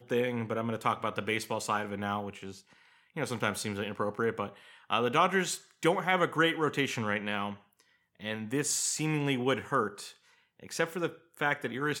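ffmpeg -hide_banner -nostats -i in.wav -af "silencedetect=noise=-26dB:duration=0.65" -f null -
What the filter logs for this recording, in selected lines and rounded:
silence_start: 2.21
silence_end: 3.18 | silence_duration: 0.97
silence_start: 7.49
silence_end: 8.25 | silence_duration: 0.76
silence_start: 9.87
silence_end: 10.80 | silence_duration: 0.93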